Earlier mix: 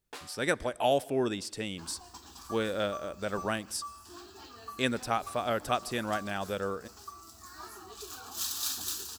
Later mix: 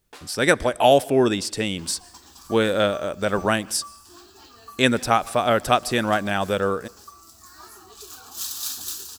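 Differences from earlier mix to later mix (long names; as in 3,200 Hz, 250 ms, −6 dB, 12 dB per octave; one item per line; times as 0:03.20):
speech +11.0 dB
second sound: add high-shelf EQ 4,400 Hz +5 dB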